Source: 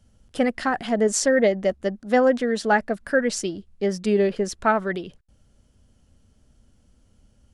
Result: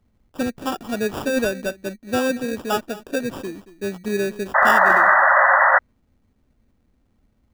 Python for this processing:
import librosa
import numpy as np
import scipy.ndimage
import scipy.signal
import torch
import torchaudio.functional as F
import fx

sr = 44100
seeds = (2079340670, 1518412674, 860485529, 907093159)

y = x + 10.0 ** (-17.0 / 20.0) * np.pad(x, (int(228 * sr / 1000.0), 0))[:len(x)]
y = fx.sample_hold(y, sr, seeds[0], rate_hz=2100.0, jitter_pct=0)
y = fx.peak_eq(y, sr, hz=290.0, db=6.0, octaves=1.0)
y = fx.spec_paint(y, sr, seeds[1], shape='noise', start_s=4.54, length_s=1.25, low_hz=530.0, high_hz=2000.0, level_db=-11.0)
y = fx.dynamic_eq(y, sr, hz=1300.0, q=0.77, threshold_db=-24.0, ratio=4.0, max_db=4)
y = F.gain(torch.from_numpy(y), -6.5).numpy()